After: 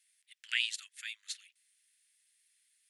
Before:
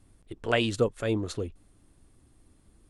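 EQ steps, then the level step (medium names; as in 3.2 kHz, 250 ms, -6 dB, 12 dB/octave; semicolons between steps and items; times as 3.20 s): steep high-pass 1.8 kHz 48 dB/octave; 0.0 dB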